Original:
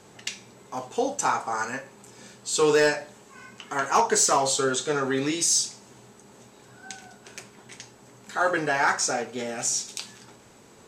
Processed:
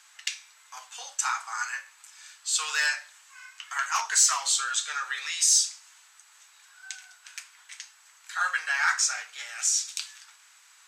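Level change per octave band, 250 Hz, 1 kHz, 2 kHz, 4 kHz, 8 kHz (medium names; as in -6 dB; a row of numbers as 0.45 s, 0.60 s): under -40 dB, -6.5 dB, +1.0 dB, +1.5 dB, +1.5 dB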